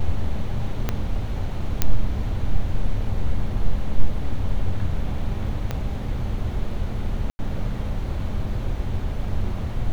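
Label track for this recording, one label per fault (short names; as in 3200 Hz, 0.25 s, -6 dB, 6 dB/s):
0.890000	0.890000	pop -9 dBFS
1.820000	1.820000	pop -4 dBFS
5.710000	5.710000	pop -13 dBFS
7.300000	7.390000	gap 90 ms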